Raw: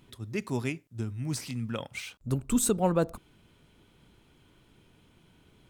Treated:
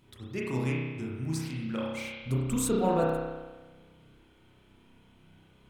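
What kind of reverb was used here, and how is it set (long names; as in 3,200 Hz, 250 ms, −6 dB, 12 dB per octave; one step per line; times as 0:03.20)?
spring reverb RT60 1.3 s, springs 31 ms, chirp 65 ms, DRR −4.5 dB
level −4.5 dB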